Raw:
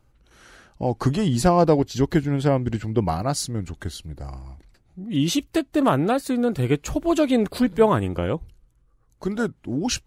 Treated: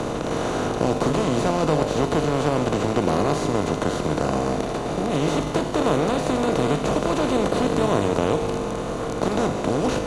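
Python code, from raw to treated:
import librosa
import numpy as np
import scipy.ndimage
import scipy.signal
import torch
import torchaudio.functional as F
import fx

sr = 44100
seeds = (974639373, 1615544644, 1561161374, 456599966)

p1 = fx.bin_compress(x, sr, power=0.2)
p2 = scipy.signal.sosfilt(scipy.signal.butter(2, 7900.0, 'lowpass', fs=sr, output='sos'), p1)
p3 = fx.peak_eq(p2, sr, hz=5200.0, db=-7.0, octaves=0.46)
p4 = fx.comb_fb(p3, sr, f0_hz=51.0, decay_s=1.8, harmonics='all', damping=0.0, mix_pct=80)
p5 = np.sign(p4) * np.maximum(np.abs(p4) - 10.0 ** (-26.5 / 20.0), 0.0)
p6 = p4 + F.gain(torch.from_numpy(p5), -9.0).numpy()
y = fx.band_squash(p6, sr, depth_pct=40)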